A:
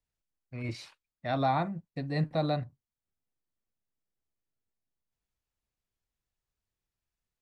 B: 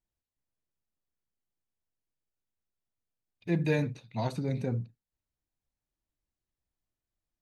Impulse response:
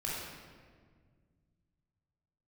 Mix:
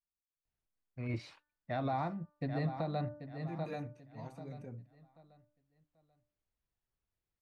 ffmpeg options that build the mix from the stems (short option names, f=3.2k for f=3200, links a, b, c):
-filter_complex "[0:a]lowpass=f=2.2k:p=1,bandreject=f=296.6:t=h:w=4,bandreject=f=593.2:t=h:w=4,bandreject=f=889.8:t=h:w=4,bandreject=f=1.1864k:t=h:w=4,bandreject=f=1.483k:t=h:w=4,bandreject=f=1.7796k:t=h:w=4,adelay=450,volume=-1dB,asplit=2[a][b];[b]volume=-10.5dB[c];[1:a]equalizer=f=4k:w=3.3:g=-13.5,volume=-16dB[d];[c]aecho=0:1:787|1574|2361|3148:1|0.29|0.0841|0.0244[e];[a][d][e]amix=inputs=3:normalize=0,alimiter=level_in=2dB:limit=-24dB:level=0:latency=1:release=284,volume=-2dB"